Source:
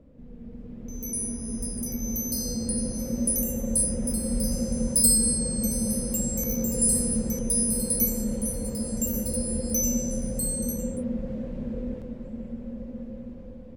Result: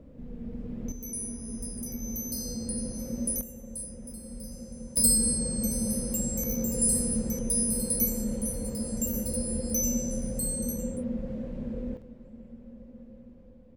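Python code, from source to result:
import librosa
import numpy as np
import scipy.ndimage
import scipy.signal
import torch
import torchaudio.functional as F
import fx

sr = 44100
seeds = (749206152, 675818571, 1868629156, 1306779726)

y = fx.gain(x, sr, db=fx.steps((0.0, 3.5), (0.92, -5.0), (3.41, -14.5), (4.97, -2.5), (11.97, -10.5)))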